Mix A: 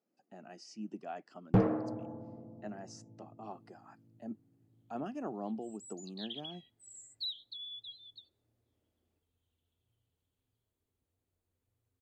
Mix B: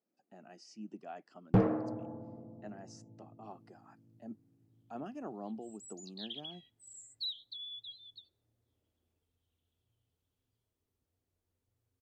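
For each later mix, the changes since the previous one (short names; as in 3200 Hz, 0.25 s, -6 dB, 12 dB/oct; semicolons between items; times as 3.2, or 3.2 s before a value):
speech -3.5 dB; second sound: remove Butterworth band-stop 5400 Hz, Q 4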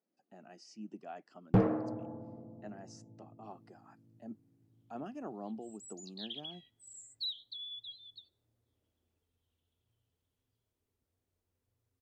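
reverb: on, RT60 0.60 s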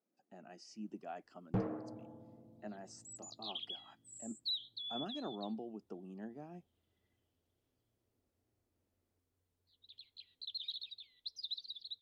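first sound -9.5 dB; second sound: entry -2.75 s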